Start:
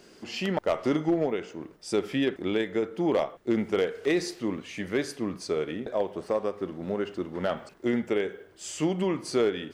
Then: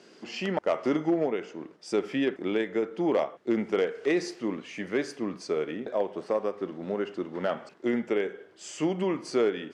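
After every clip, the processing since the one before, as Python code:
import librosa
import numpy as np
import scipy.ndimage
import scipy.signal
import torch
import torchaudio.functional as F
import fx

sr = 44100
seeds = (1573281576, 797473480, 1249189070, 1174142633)

y = scipy.signal.sosfilt(scipy.signal.butter(2, 6500.0, 'lowpass', fs=sr, output='sos'), x)
y = fx.dynamic_eq(y, sr, hz=3800.0, q=2.9, threshold_db=-55.0, ratio=4.0, max_db=-6)
y = scipy.signal.sosfilt(scipy.signal.butter(2, 180.0, 'highpass', fs=sr, output='sos'), y)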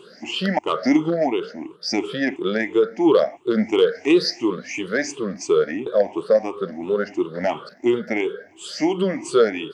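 y = fx.spec_ripple(x, sr, per_octave=0.66, drift_hz=2.9, depth_db=21)
y = fx.dynamic_eq(y, sr, hz=4700.0, q=1.4, threshold_db=-50.0, ratio=4.0, max_db=7)
y = y * librosa.db_to_amplitude(3.0)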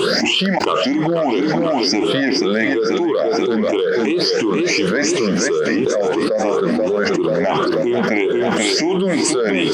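y = fx.echo_feedback(x, sr, ms=485, feedback_pct=46, wet_db=-10.0)
y = fx.env_flatten(y, sr, amount_pct=100)
y = y * librosa.db_to_amplitude(-5.5)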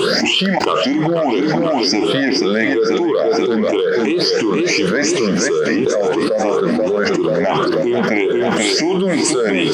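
y = fx.comb_fb(x, sr, f0_hz=150.0, decay_s=0.76, harmonics='odd', damping=0.0, mix_pct=50)
y = y * librosa.db_to_amplitude(7.0)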